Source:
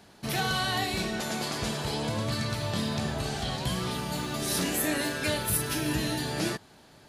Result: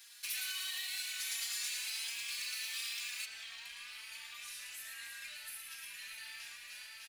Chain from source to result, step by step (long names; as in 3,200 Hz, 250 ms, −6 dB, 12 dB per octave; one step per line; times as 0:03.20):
loose part that buzzes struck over −34 dBFS, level −25 dBFS
four-pole ladder high-pass 1,500 Hz, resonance 30%
repeating echo 299 ms, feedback 59%, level −9.5 dB
downward compressor 6 to 1, threshold −46 dBFS, peak gain reduction 15 dB
single-tap delay 112 ms −5 dB
noise that follows the level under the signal 25 dB
spectral tilt +1.5 dB per octave, from 0:03.24 −3 dB per octave
hard clipping −38.5 dBFS, distortion −20 dB
high-shelf EQ 4,200 Hz +11 dB
background noise white −79 dBFS
barber-pole flanger 3.9 ms +1.4 Hz
level +3.5 dB